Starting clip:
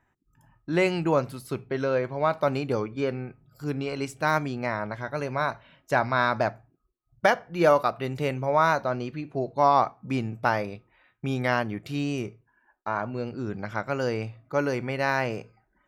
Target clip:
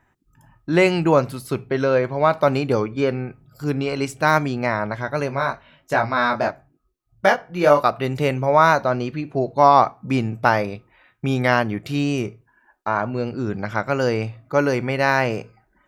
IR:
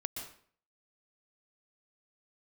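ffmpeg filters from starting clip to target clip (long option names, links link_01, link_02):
-filter_complex "[0:a]asplit=3[link_01][link_02][link_03];[link_01]afade=type=out:start_time=5.29:duration=0.02[link_04];[link_02]flanger=delay=18.5:depth=3.5:speed=1,afade=type=in:start_time=5.29:duration=0.02,afade=type=out:start_time=7.82:duration=0.02[link_05];[link_03]afade=type=in:start_time=7.82:duration=0.02[link_06];[link_04][link_05][link_06]amix=inputs=3:normalize=0,volume=7dB"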